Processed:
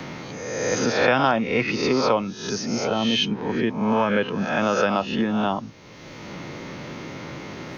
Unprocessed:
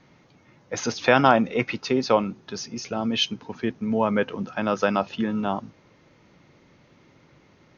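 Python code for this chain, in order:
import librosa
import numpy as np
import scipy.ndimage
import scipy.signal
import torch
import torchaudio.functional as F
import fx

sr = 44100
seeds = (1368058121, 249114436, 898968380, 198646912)

y = fx.spec_swells(x, sr, rise_s=0.69)
y = fx.band_squash(y, sr, depth_pct=70)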